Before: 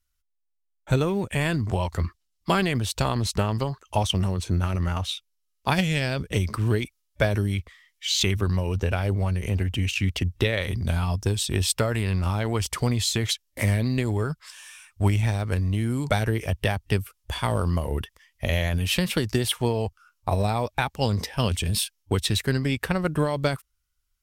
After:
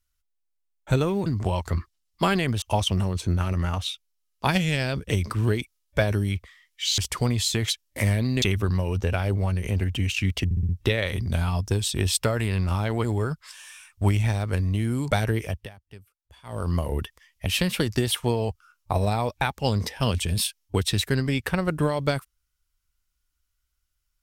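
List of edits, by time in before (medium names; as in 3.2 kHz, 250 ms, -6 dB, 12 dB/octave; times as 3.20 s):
1.26–1.53 s: delete
2.89–3.85 s: delete
10.24 s: stutter 0.06 s, 5 plays
12.59–14.03 s: move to 8.21 s
16.40–17.73 s: dip -22 dB, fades 0.29 s
18.45–18.83 s: delete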